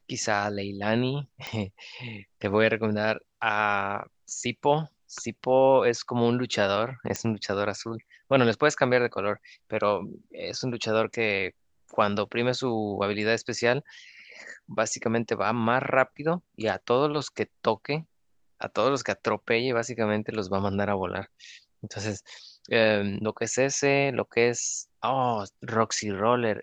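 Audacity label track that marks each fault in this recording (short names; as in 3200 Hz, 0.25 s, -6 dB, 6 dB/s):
1.470000	1.470000	pop -18 dBFS
7.160000	7.160000	pop -14 dBFS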